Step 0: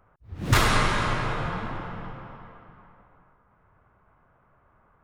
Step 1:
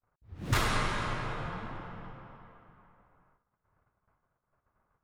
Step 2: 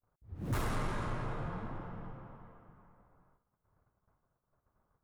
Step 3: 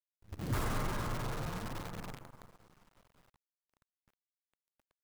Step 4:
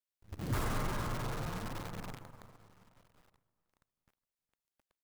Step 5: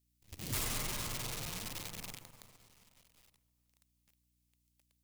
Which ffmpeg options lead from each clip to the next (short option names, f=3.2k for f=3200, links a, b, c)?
-af "agate=range=-29dB:threshold=-60dB:ratio=16:detection=peak,volume=-8dB"
-af "asoftclip=type=tanh:threshold=-28dB,equalizer=f=3.6k:t=o:w=2.9:g=-11.5,volume=1dB"
-af "acrusher=bits=8:dc=4:mix=0:aa=0.000001"
-filter_complex "[0:a]asplit=2[a][b];[b]adelay=414,lowpass=f=3.2k:p=1,volume=-21.5dB,asplit=2[c][d];[d]adelay=414,lowpass=f=3.2k:p=1,volume=0.48,asplit=2[e][f];[f]adelay=414,lowpass=f=3.2k:p=1,volume=0.48[g];[a][c][e][g]amix=inputs=4:normalize=0"
-filter_complex "[0:a]acrossover=split=360[a][b];[b]aexciter=amount=4.5:drive=4.8:freq=2.1k[c];[a][c]amix=inputs=2:normalize=0,aeval=exprs='val(0)+0.000282*(sin(2*PI*60*n/s)+sin(2*PI*2*60*n/s)/2+sin(2*PI*3*60*n/s)/3+sin(2*PI*4*60*n/s)/4+sin(2*PI*5*60*n/s)/5)':c=same,volume=-6.5dB"